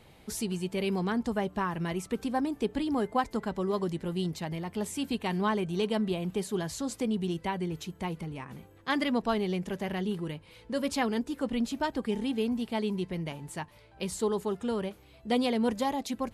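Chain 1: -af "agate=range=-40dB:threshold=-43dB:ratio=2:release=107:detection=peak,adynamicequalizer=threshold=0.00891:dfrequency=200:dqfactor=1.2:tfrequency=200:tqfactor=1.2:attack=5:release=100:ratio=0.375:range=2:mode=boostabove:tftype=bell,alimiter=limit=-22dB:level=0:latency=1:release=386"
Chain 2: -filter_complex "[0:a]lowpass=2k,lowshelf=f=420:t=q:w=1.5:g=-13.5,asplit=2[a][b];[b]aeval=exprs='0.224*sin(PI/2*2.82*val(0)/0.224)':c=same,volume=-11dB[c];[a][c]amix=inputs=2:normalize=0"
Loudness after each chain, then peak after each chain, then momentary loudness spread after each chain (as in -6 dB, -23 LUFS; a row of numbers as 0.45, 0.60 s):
-33.0, -30.0 LUFS; -22.0, -15.5 dBFS; 6, 11 LU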